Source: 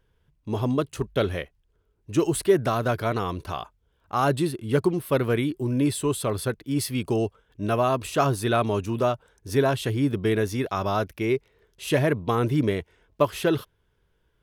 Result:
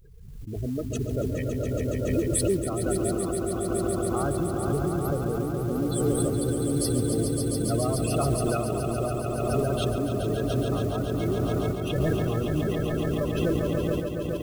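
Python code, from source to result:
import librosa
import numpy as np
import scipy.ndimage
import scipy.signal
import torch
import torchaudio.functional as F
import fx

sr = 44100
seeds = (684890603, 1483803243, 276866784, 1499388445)

p1 = fx.octave_divider(x, sr, octaves=1, level_db=-5.0)
p2 = fx.peak_eq(p1, sr, hz=1000.0, db=-7.5, octaves=0.87)
p3 = fx.echo_diffused(p2, sr, ms=488, feedback_pct=70, wet_db=-10)
p4 = fx.spec_gate(p3, sr, threshold_db=-15, keep='strong')
p5 = p4 + fx.echo_swell(p4, sr, ms=140, loudest=5, wet_db=-7.0, dry=0)
p6 = fx.tremolo_random(p5, sr, seeds[0], hz=3.5, depth_pct=55)
p7 = fx.level_steps(p6, sr, step_db=15)
p8 = p6 + (p7 * librosa.db_to_amplitude(2.0))
p9 = fx.high_shelf(p8, sr, hz=4500.0, db=10.0)
p10 = fx.mod_noise(p9, sr, seeds[1], snr_db=25)
p11 = fx.pre_swell(p10, sr, db_per_s=39.0)
y = p11 * librosa.db_to_amplitude(-7.0)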